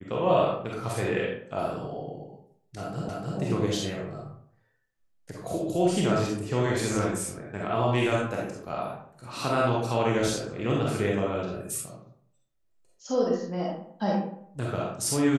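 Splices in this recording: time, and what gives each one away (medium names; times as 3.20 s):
3.09 s: repeat of the last 0.3 s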